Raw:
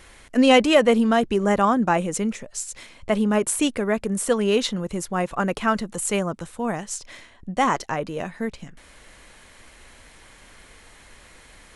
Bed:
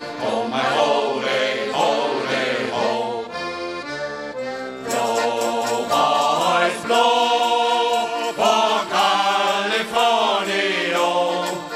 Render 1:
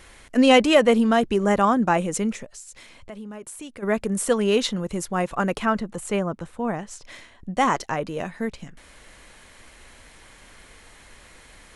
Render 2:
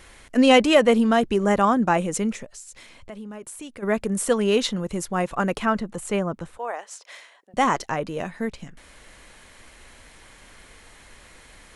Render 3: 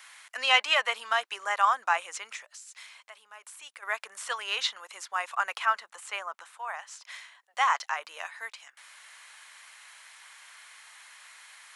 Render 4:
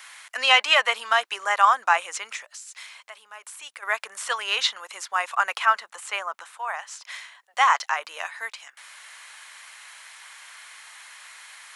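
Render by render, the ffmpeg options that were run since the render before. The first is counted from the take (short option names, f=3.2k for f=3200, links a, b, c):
-filter_complex "[0:a]asplit=3[a][b][c];[a]afade=t=out:st=2.45:d=0.02[d];[b]acompressor=threshold=-43dB:ratio=2.5:attack=3.2:release=140:knee=1:detection=peak,afade=t=in:st=2.45:d=0.02,afade=t=out:st=3.82:d=0.02[e];[c]afade=t=in:st=3.82:d=0.02[f];[d][e][f]amix=inputs=3:normalize=0,asettb=1/sr,asplit=3[g][h][i];[g]atrim=end=5.654[j];[h]atrim=start=5.65:end=7.05,asetpts=PTS-STARTPTS,afade=t=in:d=0.004:c=qsin,afade=t=out:st=1.396:d=0.004:c=qsin,highshelf=f=3.5k:g=-11.5[k];[i]atrim=start=7.046[l];[j][k]acrossfade=d=0.004:c1=hsin:c2=qsin[m];[m][l]acrossfade=d=0.004:c1=qsin:c2=hsin"
-filter_complex "[0:a]asettb=1/sr,asplit=3[a][b][c];[a]atrim=end=6.584[d];[b]atrim=start=6.58:end=7.54,asetpts=PTS-STARTPTS,afade=t=in:d=0.004:c=qsin,afade=t=out:st=0.956:d=0.004:c=qsin,highpass=f=490:w=0.5412,highpass=f=490:w=1.3066[e];[c]atrim=start=7.536[f];[d][e]acrossfade=d=0.004:c1=hsin:c2=qsin[g];[g][f]acrossfade=d=0.004:c1=qsin:c2=hsin"
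-filter_complex "[0:a]acrossover=split=5700[a][b];[b]acompressor=threshold=-48dB:ratio=4:attack=1:release=60[c];[a][c]amix=inputs=2:normalize=0,highpass=f=950:w=0.5412,highpass=f=950:w=1.3066"
-af "volume=6dB,alimiter=limit=-3dB:level=0:latency=1"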